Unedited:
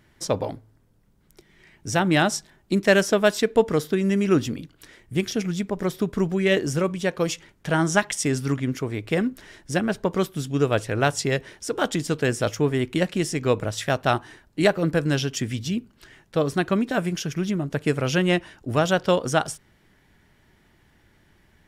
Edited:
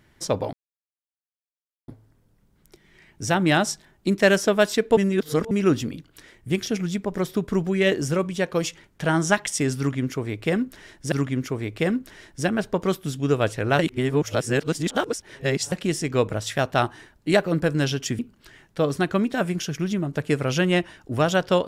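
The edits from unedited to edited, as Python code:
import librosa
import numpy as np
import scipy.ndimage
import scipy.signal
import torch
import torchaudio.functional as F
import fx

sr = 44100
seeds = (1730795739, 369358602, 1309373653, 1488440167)

y = fx.edit(x, sr, fx.insert_silence(at_s=0.53, length_s=1.35),
    fx.reverse_span(start_s=3.62, length_s=0.54),
    fx.repeat(start_s=8.43, length_s=1.34, count=2),
    fx.reverse_span(start_s=11.1, length_s=1.93),
    fx.cut(start_s=15.5, length_s=0.26), tone=tone)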